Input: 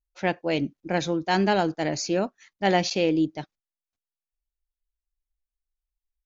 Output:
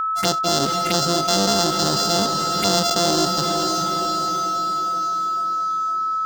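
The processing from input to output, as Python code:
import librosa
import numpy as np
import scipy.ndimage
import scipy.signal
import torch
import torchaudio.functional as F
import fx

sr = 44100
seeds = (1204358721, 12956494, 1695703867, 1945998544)

y = np.r_[np.sort(x[:len(x) // 64 * 64].reshape(-1, 64), axis=1).ravel(), x[len(x) // 64 * 64:]]
y = fx.peak_eq(y, sr, hz=4900.0, db=11.0, octaves=2.5)
y = fx.env_phaser(y, sr, low_hz=380.0, high_hz=2300.0, full_db=-22.0)
y = y + 10.0 ** (-33.0 / 20.0) * np.sin(2.0 * np.pi * 1300.0 * np.arange(len(y)) / sr)
y = fx.echo_diffused(y, sr, ms=468, feedback_pct=50, wet_db=-10.5)
y = fx.env_flatten(y, sr, amount_pct=70)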